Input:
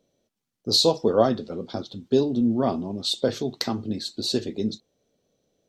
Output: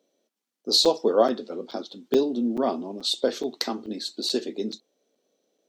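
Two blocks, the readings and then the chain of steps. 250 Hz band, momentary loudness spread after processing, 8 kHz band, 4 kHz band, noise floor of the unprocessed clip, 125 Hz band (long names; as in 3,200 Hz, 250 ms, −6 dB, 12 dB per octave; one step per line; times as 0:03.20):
−3.0 dB, 15 LU, 0.0 dB, 0.0 dB, −83 dBFS, −14.5 dB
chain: high-pass filter 250 Hz 24 dB per octave
regular buffer underruns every 0.43 s, samples 256, zero, from 0:00.85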